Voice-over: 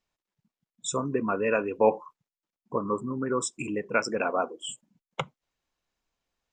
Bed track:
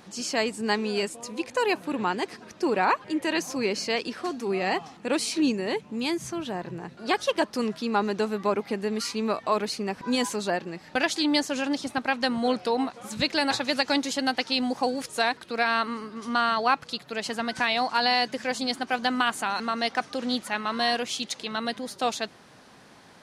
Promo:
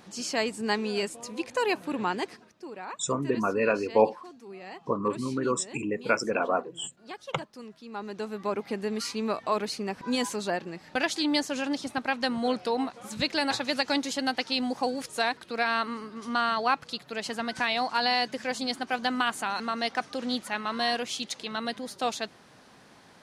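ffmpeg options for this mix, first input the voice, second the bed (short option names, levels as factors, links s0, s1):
-filter_complex "[0:a]adelay=2150,volume=1.06[s0];[1:a]volume=3.98,afade=t=out:st=2.21:d=0.31:silence=0.188365,afade=t=in:st=7.85:d=0.93:silence=0.199526[s1];[s0][s1]amix=inputs=2:normalize=0"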